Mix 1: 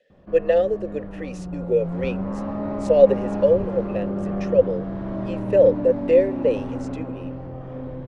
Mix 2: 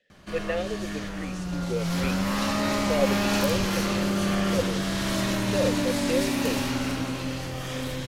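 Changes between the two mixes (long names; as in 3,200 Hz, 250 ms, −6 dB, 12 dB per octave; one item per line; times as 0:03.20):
speech: add parametric band 530 Hz −12.5 dB 1.2 octaves
background: remove Chebyshev low-pass filter 680 Hz, order 2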